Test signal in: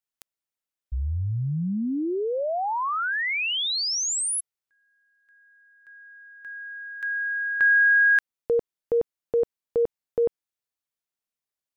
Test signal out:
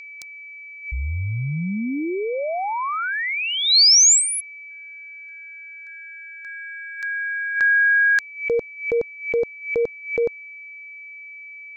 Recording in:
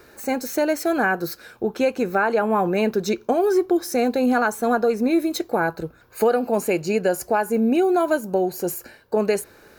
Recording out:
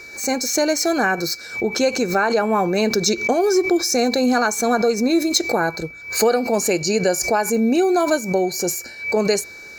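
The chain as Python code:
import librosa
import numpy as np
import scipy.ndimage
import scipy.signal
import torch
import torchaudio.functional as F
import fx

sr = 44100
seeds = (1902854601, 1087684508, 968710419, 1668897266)

y = x + 10.0 ** (-38.0 / 20.0) * np.sin(2.0 * np.pi * 2300.0 * np.arange(len(x)) / sr)
y = fx.band_shelf(y, sr, hz=5500.0, db=12.5, octaves=1.1)
y = fx.pre_swell(y, sr, db_per_s=120.0)
y = y * 10.0 ** (1.5 / 20.0)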